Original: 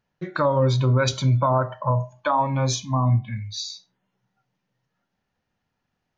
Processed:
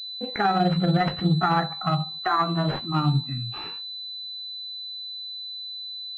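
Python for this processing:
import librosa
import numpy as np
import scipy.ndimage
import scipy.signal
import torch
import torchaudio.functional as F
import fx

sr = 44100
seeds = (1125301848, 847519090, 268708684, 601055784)

y = fx.pitch_glide(x, sr, semitones=6.0, runs='ending unshifted')
y = fx.pwm(y, sr, carrier_hz=4000.0)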